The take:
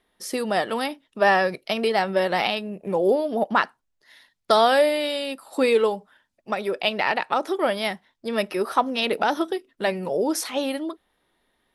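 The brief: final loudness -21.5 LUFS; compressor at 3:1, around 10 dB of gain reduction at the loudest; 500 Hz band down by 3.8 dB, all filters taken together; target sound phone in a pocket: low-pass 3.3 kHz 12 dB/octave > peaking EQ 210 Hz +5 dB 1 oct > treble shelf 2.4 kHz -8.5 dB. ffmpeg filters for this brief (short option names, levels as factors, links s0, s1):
-af "equalizer=f=500:t=o:g=-5,acompressor=threshold=0.0355:ratio=3,lowpass=3300,equalizer=f=210:t=o:w=1:g=5,highshelf=f=2400:g=-8.5,volume=3.35"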